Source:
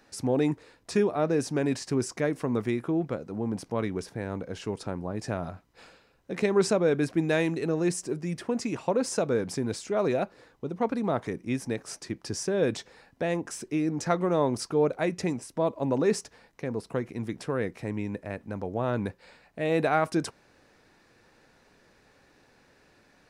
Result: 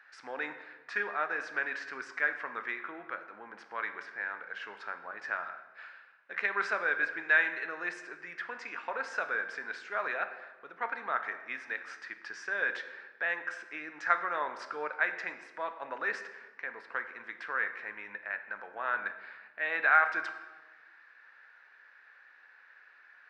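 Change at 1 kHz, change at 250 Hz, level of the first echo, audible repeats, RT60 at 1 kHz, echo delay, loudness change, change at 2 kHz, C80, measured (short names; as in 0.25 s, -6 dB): -0.5 dB, -24.0 dB, none, none, 1.2 s, none, -4.5 dB, +9.0 dB, 12.0 dB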